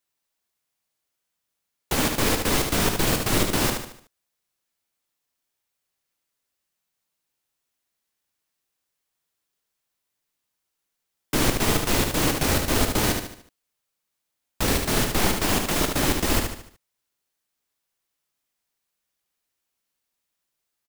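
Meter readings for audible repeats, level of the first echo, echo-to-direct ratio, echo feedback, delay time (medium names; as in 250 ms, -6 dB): 5, -5.0 dB, -4.0 dB, 43%, 74 ms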